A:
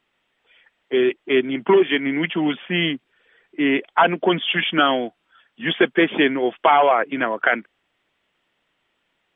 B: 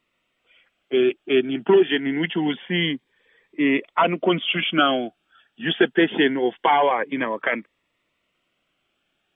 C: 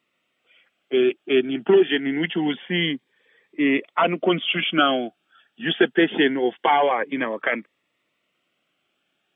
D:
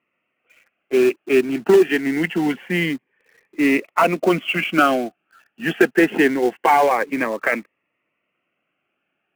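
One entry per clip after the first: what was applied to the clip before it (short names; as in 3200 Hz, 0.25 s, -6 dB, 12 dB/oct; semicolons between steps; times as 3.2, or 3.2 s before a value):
cascading phaser rising 0.25 Hz
HPF 130 Hz 12 dB/oct; notch 980 Hz, Q 15
elliptic low-pass 2700 Hz, stop band 40 dB; in parallel at -5.5 dB: companded quantiser 4-bit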